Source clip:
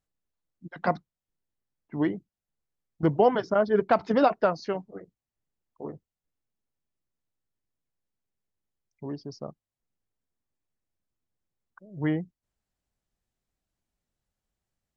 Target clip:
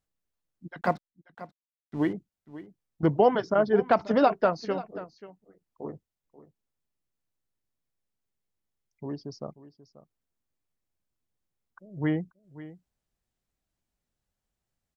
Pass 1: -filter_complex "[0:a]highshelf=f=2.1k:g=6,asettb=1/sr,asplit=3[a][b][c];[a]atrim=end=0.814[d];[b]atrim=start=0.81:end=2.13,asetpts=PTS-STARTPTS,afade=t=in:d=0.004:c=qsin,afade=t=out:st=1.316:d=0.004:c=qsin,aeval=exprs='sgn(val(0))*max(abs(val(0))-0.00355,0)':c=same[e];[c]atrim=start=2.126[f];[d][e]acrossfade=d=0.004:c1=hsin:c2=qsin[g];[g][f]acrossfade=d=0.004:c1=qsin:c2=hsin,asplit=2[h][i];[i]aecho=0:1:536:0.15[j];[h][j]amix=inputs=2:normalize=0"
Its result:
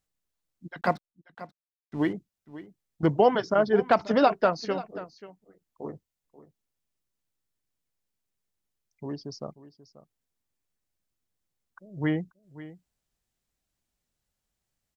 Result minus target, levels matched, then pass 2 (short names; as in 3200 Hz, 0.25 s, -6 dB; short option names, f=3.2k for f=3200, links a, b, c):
4000 Hz band +4.0 dB
-filter_complex "[0:a]asettb=1/sr,asplit=3[a][b][c];[a]atrim=end=0.814[d];[b]atrim=start=0.81:end=2.13,asetpts=PTS-STARTPTS,afade=t=in:d=0.004:c=qsin,afade=t=out:st=1.316:d=0.004:c=qsin,aeval=exprs='sgn(val(0))*max(abs(val(0))-0.00355,0)':c=same[e];[c]atrim=start=2.126[f];[d][e]acrossfade=d=0.004:c1=hsin:c2=qsin[g];[g][f]acrossfade=d=0.004:c1=qsin:c2=hsin,asplit=2[h][i];[i]aecho=0:1:536:0.15[j];[h][j]amix=inputs=2:normalize=0"